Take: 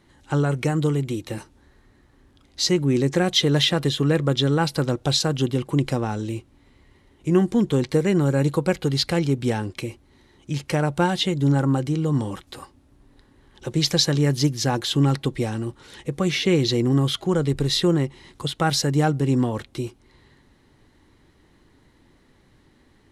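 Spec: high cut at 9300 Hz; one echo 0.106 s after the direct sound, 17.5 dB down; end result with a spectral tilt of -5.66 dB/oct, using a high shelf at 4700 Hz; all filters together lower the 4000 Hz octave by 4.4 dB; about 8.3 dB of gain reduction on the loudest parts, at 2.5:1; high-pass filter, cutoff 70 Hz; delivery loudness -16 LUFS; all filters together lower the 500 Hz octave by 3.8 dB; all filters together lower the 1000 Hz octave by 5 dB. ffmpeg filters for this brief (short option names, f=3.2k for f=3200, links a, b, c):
-af "highpass=70,lowpass=9.3k,equalizer=f=500:t=o:g=-4,equalizer=f=1k:t=o:g=-5,equalizer=f=4k:t=o:g=-3.5,highshelf=f=4.7k:g=-3,acompressor=threshold=-29dB:ratio=2.5,aecho=1:1:106:0.133,volume=15dB"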